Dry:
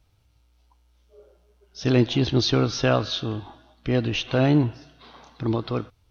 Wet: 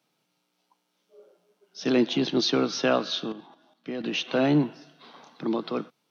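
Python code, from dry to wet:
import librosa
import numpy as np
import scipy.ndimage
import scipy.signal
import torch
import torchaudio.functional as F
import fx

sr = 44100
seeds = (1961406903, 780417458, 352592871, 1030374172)

y = scipy.signal.sosfilt(scipy.signal.butter(12, 150.0, 'highpass', fs=sr, output='sos'), x)
y = fx.level_steps(y, sr, step_db=10, at=(3.32, 4.04))
y = y * librosa.db_to_amplitude(-1.5)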